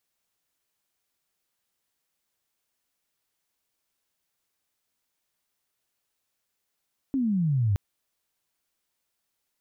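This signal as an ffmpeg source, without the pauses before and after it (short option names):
-f lavfi -i "aevalsrc='pow(10,(-22.5+2.5*t/0.62)/20)*sin(2*PI*280*0.62/log(94/280)*(exp(log(94/280)*t/0.62)-1))':d=0.62:s=44100"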